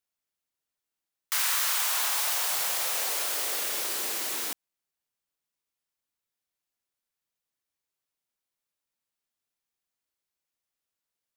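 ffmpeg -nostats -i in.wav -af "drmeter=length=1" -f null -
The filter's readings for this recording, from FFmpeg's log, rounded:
Channel 1: DR: 9.7
Overall DR: 9.7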